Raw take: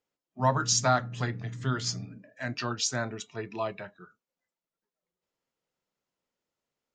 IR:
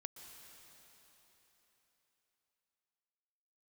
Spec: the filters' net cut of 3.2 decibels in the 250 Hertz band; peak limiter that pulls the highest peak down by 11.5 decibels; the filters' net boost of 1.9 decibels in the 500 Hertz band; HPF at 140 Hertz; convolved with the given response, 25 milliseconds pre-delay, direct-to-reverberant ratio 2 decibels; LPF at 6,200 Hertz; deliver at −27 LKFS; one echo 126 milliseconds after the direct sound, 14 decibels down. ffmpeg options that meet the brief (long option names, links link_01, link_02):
-filter_complex "[0:a]highpass=140,lowpass=6200,equalizer=frequency=250:width_type=o:gain=-4,equalizer=frequency=500:width_type=o:gain=3.5,alimiter=limit=-23.5dB:level=0:latency=1,aecho=1:1:126:0.2,asplit=2[link_01][link_02];[1:a]atrim=start_sample=2205,adelay=25[link_03];[link_02][link_03]afir=irnorm=-1:irlink=0,volume=2.5dB[link_04];[link_01][link_04]amix=inputs=2:normalize=0,volume=6.5dB"